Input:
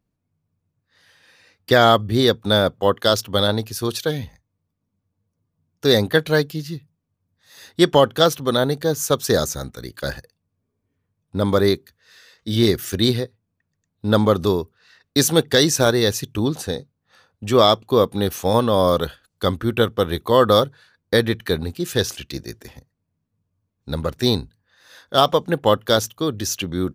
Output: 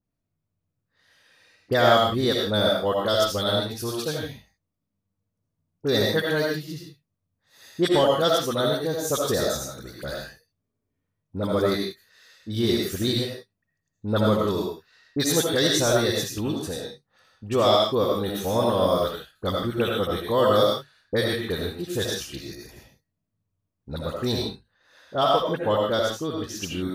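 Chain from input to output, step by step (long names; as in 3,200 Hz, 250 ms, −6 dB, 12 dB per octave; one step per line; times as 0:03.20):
0:24.28–0:26.60: high-shelf EQ 4,900 Hz −9.5 dB
all-pass dispersion highs, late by 42 ms, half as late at 1,600 Hz
convolution reverb, pre-delay 40 ms, DRR −1 dB
level −7.5 dB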